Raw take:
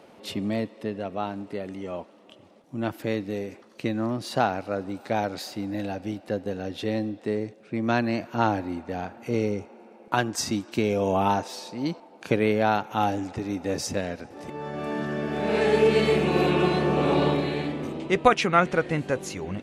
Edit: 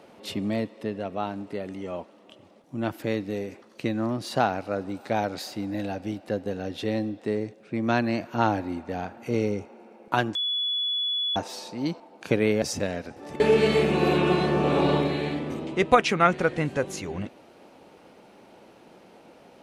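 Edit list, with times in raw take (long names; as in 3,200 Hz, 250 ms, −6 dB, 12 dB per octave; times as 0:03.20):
0:10.35–0:11.36: beep over 3,410 Hz −24 dBFS
0:12.62–0:13.76: remove
0:14.54–0:15.73: remove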